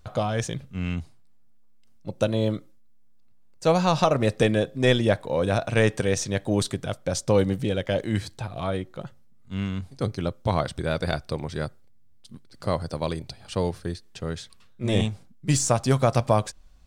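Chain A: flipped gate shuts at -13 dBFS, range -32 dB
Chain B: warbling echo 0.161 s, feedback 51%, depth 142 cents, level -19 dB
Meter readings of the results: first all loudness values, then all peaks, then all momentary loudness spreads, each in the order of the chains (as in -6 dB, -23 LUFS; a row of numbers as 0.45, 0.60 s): -32.0, -26.0 LUFS; -11.0, -7.0 dBFS; 16, 13 LU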